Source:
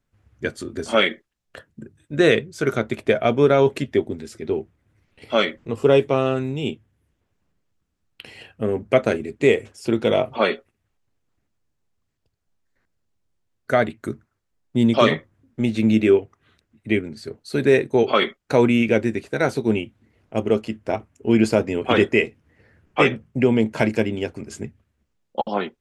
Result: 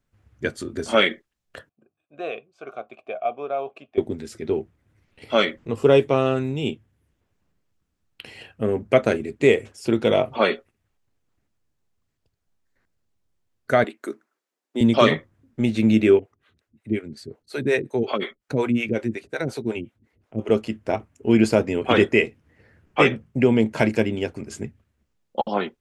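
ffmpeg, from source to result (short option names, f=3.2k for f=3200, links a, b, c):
-filter_complex "[0:a]asettb=1/sr,asplit=3[a][b][c];[a]atrim=end=1.694[d];[b]atrim=start=1.69:end=3.98,asetpts=PTS-STARTPTS,afade=t=in:d=0.004:c=qsin,afade=t=out:st=2.286:d=0.004:c=qsin,asplit=3[e][f][g];[e]bandpass=f=730:t=q:w=8,volume=0dB[h];[f]bandpass=f=1.09k:t=q:w=8,volume=-6dB[i];[g]bandpass=f=2.44k:t=q:w=8,volume=-9dB[j];[h][i][j]amix=inputs=3:normalize=0[k];[c]atrim=start=3.976[l];[d][k]acrossfade=d=0.004:c1=hsin:c2=qsin[m];[m][l]acrossfade=d=0.004:c1=qsin:c2=hsin,asettb=1/sr,asplit=3[n][o][p];[n]atrim=end=13.844[q];[o]atrim=start=13.84:end=14.81,asetpts=PTS-STARTPTS,afade=t=in:d=0.004:c=qsin,afade=t=out:st=0.966:d=0.004:c=qsin,highpass=f=290:w=0.5412,highpass=f=290:w=1.3066[r];[p]atrim=start=14.806[s];[q][r]acrossfade=d=0.004:c1=hsin:c2=qsin[t];[t][s]acrossfade=d=0.004:c1=qsin:c2=hsin,asettb=1/sr,asplit=3[u][v][w];[u]atrim=end=16.194[x];[v]atrim=start=16.19:end=20.49,asetpts=PTS-STARTPTS,afade=t=in:d=0.004:c=qsin,afade=t=out:st=4.296:d=0.004:c=qsin,acrossover=split=410[y][z];[y]aeval=exprs='val(0)*(1-1/2+1/2*cos(2*PI*5.5*n/s))':c=same[aa];[z]aeval=exprs='val(0)*(1-1/2-1/2*cos(2*PI*5.5*n/s))':c=same[ab];[aa][ab]amix=inputs=2:normalize=0[ac];[w]atrim=start=20.486[ad];[x][ac]acrossfade=d=0.004:c1=hsin:c2=qsin[ae];[ae][ad]acrossfade=d=0.004:c1=qsin:c2=hsin"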